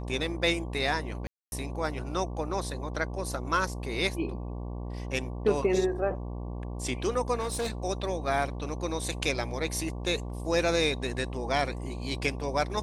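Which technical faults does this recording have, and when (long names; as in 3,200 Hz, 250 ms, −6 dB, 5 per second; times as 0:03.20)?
mains buzz 60 Hz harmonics 19 −36 dBFS
0:01.27–0:01.52: drop-out 251 ms
0:07.39–0:07.70: clipping −27 dBFS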